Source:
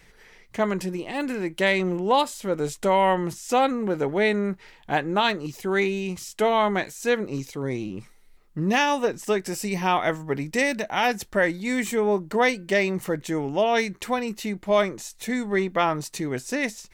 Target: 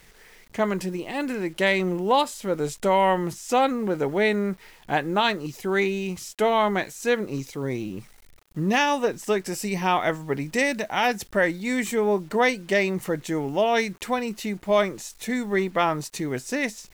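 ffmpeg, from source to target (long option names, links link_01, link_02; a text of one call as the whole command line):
ffmpeg -i in.wav -af "acrusher=bits=8:mix=0:aa=0.000001" out.wav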